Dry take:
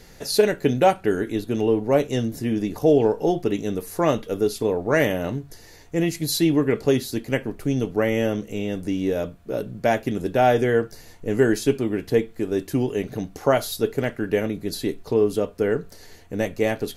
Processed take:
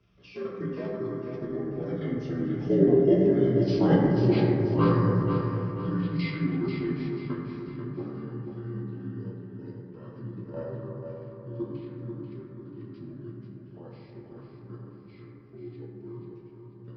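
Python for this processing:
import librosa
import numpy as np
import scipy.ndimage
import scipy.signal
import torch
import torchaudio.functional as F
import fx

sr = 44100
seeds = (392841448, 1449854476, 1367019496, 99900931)

y = fx.partial_stretch(x, sr, pct=78)
y = fx.doppler_pass(y, sr, speed_mps=19, closest_m=13.0, pass_at_s=3.77)
y = scipy.signal.sosfilt(scipy.signal.butter(2, 54.0, 'highpass', fs=sr, output='sos'), y)
y = fx.high_shelf(y, sr, hz=2400.0, db=5.5)
y = fx.hum_notches(y, sr, base_hz=50, count=3)
y = fx.level_steps(y, sr, step_db=12)
y = fx.bass_treble(y, sr, bass_db=13, treble_db=-9)
y = fx.echo_feedback(y, sr, ms=488, feedback_pct=40, wet_db=-7.0)
y = fx.rev_fdn(y, sr, rt60_s=2.6, lf_ratio=0.85, hf_ratio=0.3, size_ms=51.0, drr_db=-3.5)
y = F.gain(torch.from_numpy(y), -2.5).numpy()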